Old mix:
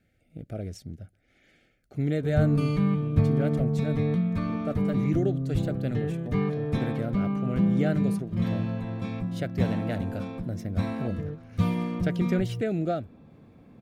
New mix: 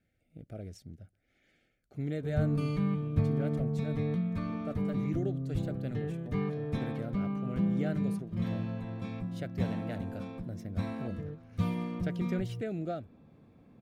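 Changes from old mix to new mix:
speech -8.0 dB; background -6.0 dB

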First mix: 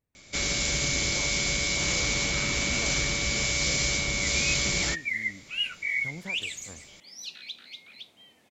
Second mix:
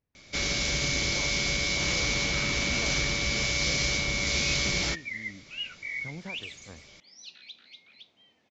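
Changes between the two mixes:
second sound -6.5 dB; master: add steep low-pass 6300 Hz 36 dB/oct

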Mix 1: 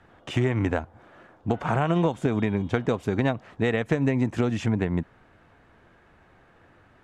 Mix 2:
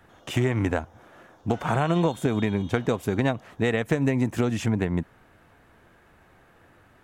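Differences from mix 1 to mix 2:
speech: remove air absorption 71 m; background: remove air absorption 430 m

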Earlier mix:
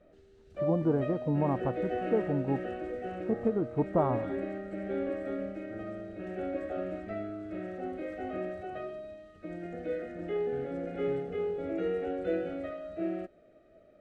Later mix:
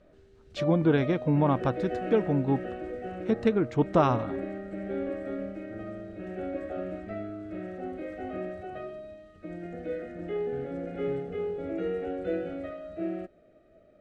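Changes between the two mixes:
speech: remove ladder low-pass 1200 Hz, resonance 20%; background: add tone controls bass +3 dB, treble 0 dB

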